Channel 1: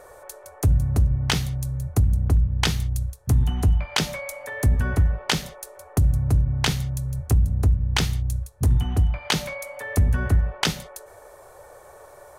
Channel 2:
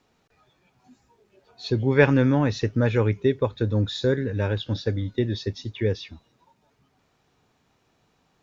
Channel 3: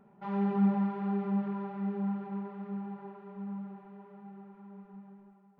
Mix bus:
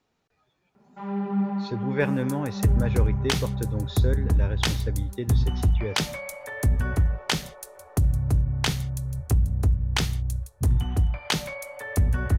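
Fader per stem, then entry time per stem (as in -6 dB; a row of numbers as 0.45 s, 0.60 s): -2.5 dB, -7.5 dB, +1.0 dB; 2.00 s, 0.00 s, 0.75 s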